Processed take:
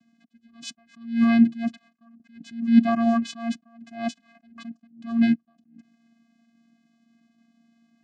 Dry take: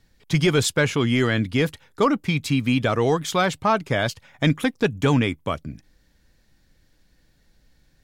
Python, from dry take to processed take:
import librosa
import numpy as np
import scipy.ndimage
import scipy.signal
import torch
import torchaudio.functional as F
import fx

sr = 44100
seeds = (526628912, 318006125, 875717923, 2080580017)

y = fx.vocoder(x, sr, bands=8, carrier='square', carrier_hz=231.0)
y = fx.attack_slew(y, sr, db_per_s=130.0)
y = y * 10.0 ** (6.0 / 20.0)